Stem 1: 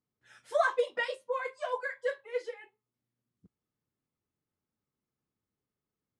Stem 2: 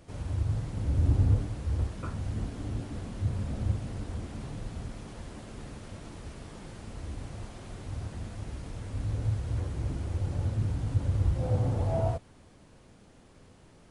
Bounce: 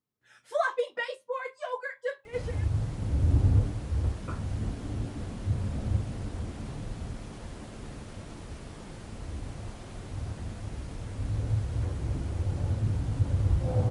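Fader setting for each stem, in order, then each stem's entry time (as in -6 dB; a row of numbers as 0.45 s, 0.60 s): -0.5 dB, +1.0 dB; 0.00 s, 2.25 s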